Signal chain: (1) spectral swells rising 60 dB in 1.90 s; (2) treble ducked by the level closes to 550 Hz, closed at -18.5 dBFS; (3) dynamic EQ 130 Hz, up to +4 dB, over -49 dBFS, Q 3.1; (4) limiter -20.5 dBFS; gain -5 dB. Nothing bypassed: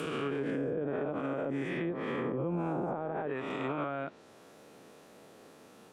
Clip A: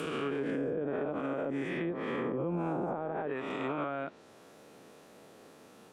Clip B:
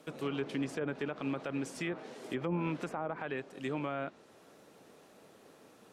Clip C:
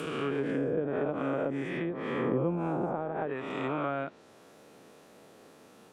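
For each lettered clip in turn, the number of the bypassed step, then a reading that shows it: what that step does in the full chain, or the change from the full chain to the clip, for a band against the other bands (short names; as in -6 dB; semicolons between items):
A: 3, 125 Hz band -2.0 dB; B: 1, 4 kHz band +3.0 dB; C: 4, crest factor change +5.5 dB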